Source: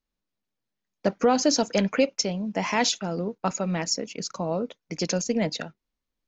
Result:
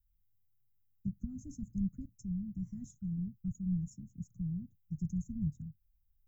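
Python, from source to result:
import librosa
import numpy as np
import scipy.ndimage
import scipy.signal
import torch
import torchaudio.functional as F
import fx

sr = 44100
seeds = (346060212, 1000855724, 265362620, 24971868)

y = scipy.signal.sosfilt(scipy.signal.cheby2(4, 70, [460.0, 4800.0], 'bandstop', fs=sr, output='sos'), x)
y = y * librosa.db_to_amplitude(13.0)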